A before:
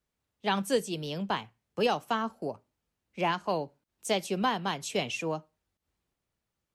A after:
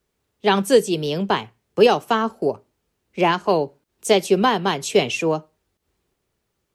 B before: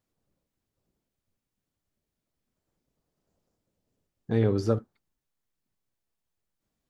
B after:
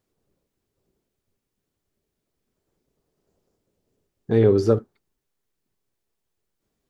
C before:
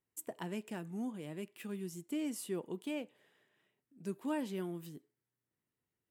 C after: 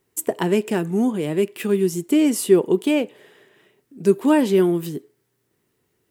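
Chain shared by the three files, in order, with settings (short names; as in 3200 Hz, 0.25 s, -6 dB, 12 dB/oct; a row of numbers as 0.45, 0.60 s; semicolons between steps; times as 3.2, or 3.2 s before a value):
bell 400 Hz +8 dB 0.46 oct; match loudness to -20 LUFS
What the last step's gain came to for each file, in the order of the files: +9.5, +4.0, +18.5 dB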